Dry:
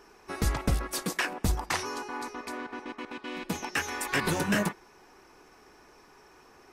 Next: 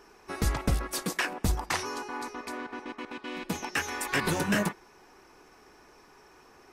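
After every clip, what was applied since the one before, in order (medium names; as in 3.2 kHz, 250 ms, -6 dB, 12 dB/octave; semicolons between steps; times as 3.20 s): no audible change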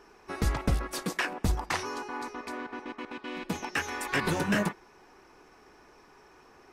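treble shelf 6.1 kHz -7 dB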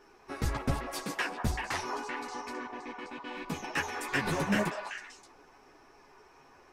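repeats whose band climbs or falls 193 ms, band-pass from 840 Hz, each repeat 1.4 oct, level -1 dB; chorus voices 6, 1.1 Hz, delay 11 ms, depth 3.8 ms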